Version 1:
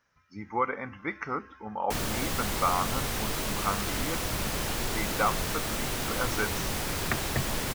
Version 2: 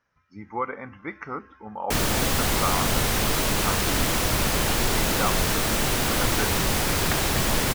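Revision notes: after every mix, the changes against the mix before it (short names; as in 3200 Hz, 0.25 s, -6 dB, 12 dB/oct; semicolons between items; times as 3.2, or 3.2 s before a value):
speech: add high shelf 3200 Hz -8 dB; background +8.0 dB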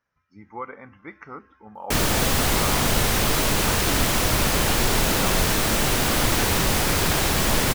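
speech -5.5 dB; background: send +9.0 dB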